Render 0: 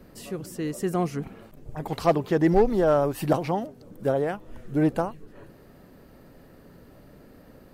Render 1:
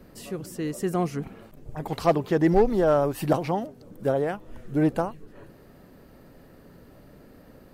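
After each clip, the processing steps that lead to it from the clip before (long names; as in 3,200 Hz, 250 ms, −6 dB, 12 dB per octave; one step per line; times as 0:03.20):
no processing that can be heard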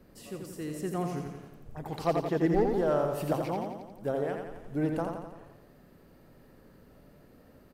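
repeating echo 86 ms, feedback 57%, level −5 dB
level −7.5 dB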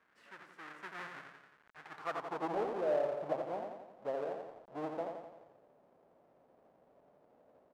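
each half-wave held at its own peak
band-pass filter sweep 1,600 Hz → 640 Hz, 0:01.86–0:02.60
level −5 dB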